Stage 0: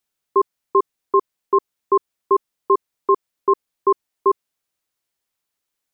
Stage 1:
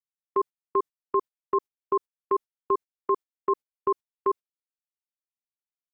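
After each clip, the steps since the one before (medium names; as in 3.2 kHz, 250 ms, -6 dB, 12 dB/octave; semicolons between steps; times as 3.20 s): gate -24 dBFS, range -24 dB; trim -8 dB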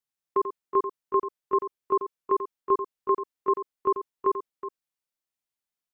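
harmonic-percussive split harmonic +7 dB; multi-tap echo 89/370 ms -10/-11.5 dB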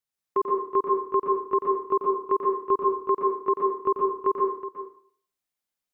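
plate-style reverb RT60 0.51 s, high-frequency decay 0.85×, pre-delay 110 ms, DRR 0.5 dB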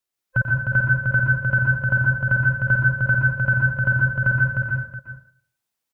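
every band turned upside down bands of 500 Hz; on a send: delay 306 ms -4 dB; on the sum: trim +4 dB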